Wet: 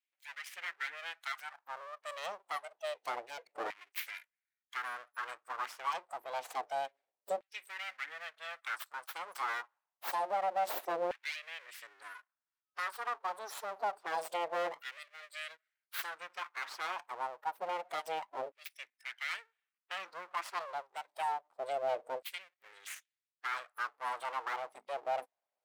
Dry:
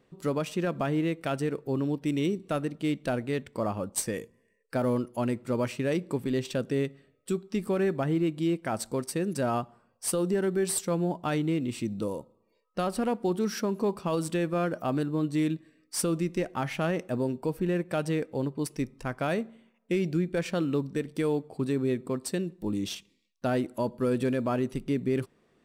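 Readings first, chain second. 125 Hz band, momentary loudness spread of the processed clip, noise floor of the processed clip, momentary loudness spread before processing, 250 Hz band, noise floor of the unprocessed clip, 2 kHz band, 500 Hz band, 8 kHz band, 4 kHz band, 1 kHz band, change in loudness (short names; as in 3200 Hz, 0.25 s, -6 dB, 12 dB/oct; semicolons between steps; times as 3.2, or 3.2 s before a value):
under -35 dB, 11 LU, under -85 dBFS, 6 LU, -32.0 dB, -70 dBFS, -0.5 dB, -12.5 dB, -15.5 dB, -4.5 dB, 0.0 dB, -10.0 dB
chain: spectral noise reduction 19 dB; full-wave rectifier; LFO high-pass saw down 0.27 Hz 540–2400 Hz; gain -4.5 dB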